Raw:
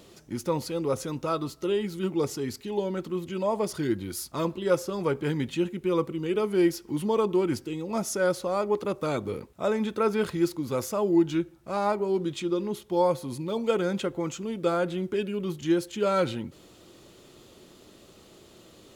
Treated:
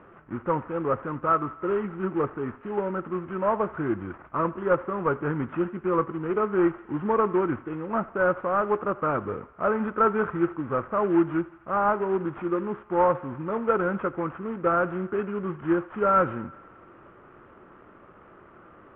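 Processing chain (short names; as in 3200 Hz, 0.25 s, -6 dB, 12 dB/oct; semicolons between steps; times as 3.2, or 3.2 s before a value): CVSD 16 kbps; synth low-pass 1300 Hz, resonance Q 3.4; thinning echo 84 ms, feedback 74%, high-pass 480 Hz, level -19.5 dB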